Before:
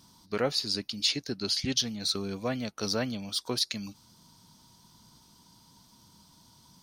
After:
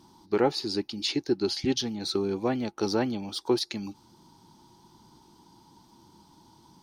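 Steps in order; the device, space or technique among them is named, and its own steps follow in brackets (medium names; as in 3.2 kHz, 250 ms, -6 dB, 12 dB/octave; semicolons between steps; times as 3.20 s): inside a helmet (treble shelf 4.6 kHz -7.5 dB; small resonant body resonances 350/830 Hz, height 15 dB, ringing for 40 ms)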